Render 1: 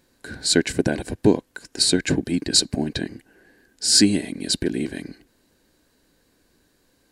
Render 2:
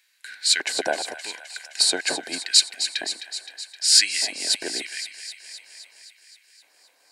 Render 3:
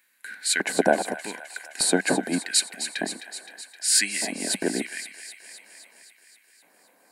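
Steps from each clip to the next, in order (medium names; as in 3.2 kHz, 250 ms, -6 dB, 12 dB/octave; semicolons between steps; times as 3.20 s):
LFO high-pass square 0.83 Hz 730–2200 Hz; feedback echo behind a high-pass 260 ms, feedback 67%, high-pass 1.4 kHz, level -10 dB
FFT filter 130 Hz 0 dB, 190 Hz +12 dB, 350 Hz -1 dB, 1.8 kHz -7 dB, 3 kHz -14 dB, 5.2 kHz -18 dB, 11 kHz -4 dB; trim +8.5 dB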